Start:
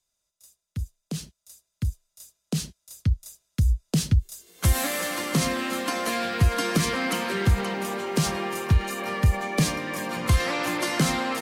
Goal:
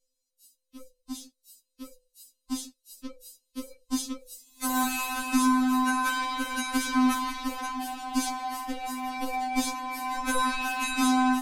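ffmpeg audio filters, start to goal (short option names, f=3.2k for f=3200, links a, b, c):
-filter_complex "[0:a]afftfilt=real='real(if(between(b,1,1008),(2*floor((b-1)/24)+1)*24-b,b),0)':imag='imag(if(between(b,1,1008),(2*floor((b-1)/24)+1)*24-b,b),0)*if(between(b,1,1008),-1,1)':win_size=2048:overlap=0.75,lowshelf=f=110:g=11.5,acrossover=split=470|2400[a][b][c];[b]adynamicsmooth=sensitivity=6.5:basefreq=670[d];[a][d][c]amix=inputs=3:normalize=0,afftfilt=real='re*3.46*eq(mod(b,12),0)':imag='im*3.46*eq(mod(b,12),0)':win_size=2048:overlap=0.75"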